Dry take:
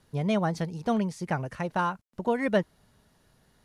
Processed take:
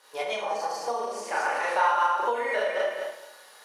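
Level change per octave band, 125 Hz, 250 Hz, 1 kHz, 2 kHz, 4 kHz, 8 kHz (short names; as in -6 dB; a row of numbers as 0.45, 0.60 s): under -30 dB, -19.5 dB, +7.5 dB, +7.0 dB, +5.5 dB, +7.0 dB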